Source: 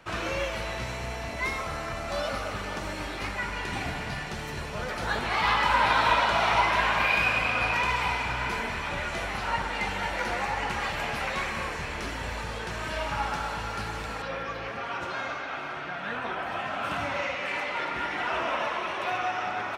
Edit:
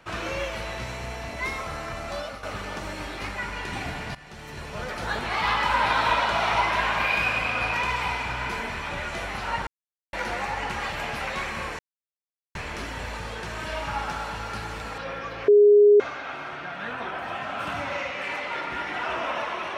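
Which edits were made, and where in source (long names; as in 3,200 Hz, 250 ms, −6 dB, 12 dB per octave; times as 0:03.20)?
0:02.07–0:02.43: fade out, to −10.5 dB
0:04.15–0:04.79: fade in, from −15.5 dB
0:09.67–0:10.13: silence
0:11.79: splice in silence 0.76 s
0:14.72–0:15.24: beep over 413 Hz −11 dBFS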